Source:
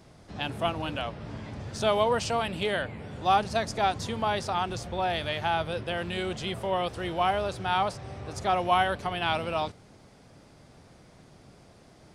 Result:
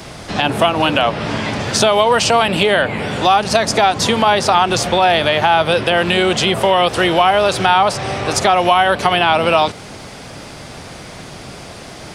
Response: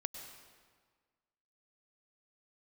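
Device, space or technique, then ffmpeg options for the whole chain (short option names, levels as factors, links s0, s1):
mastering chain: -filter_complex "[0:a]equalizer=f=2800:t=o:w=0.77:g=2.5,acrossover=split=130|1300[s0][s1][s2];[s0]acompressor=threshold=0.002:ratio=4[s3];[s1]acompressor=threshold=0.0398:ratio=4[s4];[s2]acompressor=threshold=0.0112:ratio=4[s5];[s3][s4][s5]amix=inputs=3:normalize=0,acompressor=threshold=0.0251:ratio=2.5,tiltshelf=f=630:g=-3.5,alimiter=level_in=13.3:limit=0.891:release=50:level=0:latency=1,volume=0.891"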